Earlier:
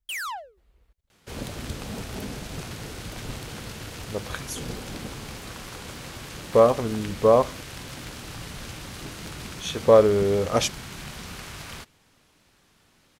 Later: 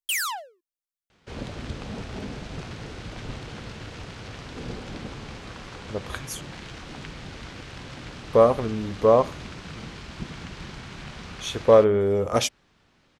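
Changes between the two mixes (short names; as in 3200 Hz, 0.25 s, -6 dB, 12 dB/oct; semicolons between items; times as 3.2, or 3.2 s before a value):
speech: entry +1.80 s; first sound: add high shelf 2800 Hz +11 dB; second sound: add air absorption 110 m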